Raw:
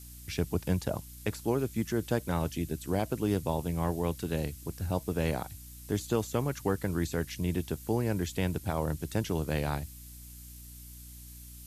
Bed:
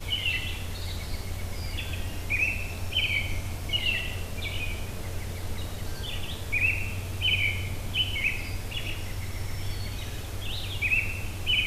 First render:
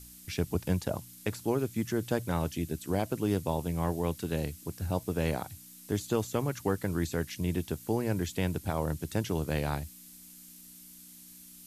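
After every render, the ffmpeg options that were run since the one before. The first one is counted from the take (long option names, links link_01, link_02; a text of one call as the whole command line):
ffmpeg -i in.wav -af "bandreject=frequency=60:width_type=h:width=4,bandreject=frequency=120:width_type=h:width=4" out.wav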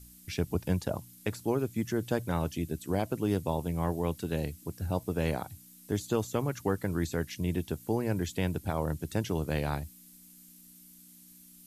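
ffmpeg -i in.wav -af "afftdn=noise_reduction=6:noise_floor=-52" out.wav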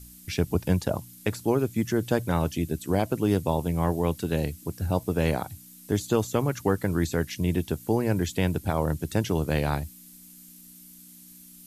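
ffmpeg -i in.wav -af "volume=5.5dB" out.wav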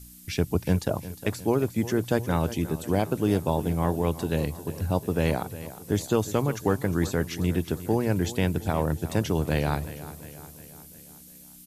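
ffmpeg -i in.wav -af "aecho=1:1:357|714|1071|1428|1785:0.178|0.0978|0.0538|0.0296|0.0163" out.wav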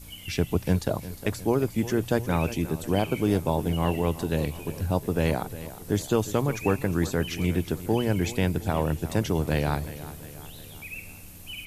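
ffmpeg -i in.wav -i bed.wav -filter_complex "[1:a]volume=-14.5dB[link_01];[0:a][link_01]amix=inputs=2:normalize=0" out.wav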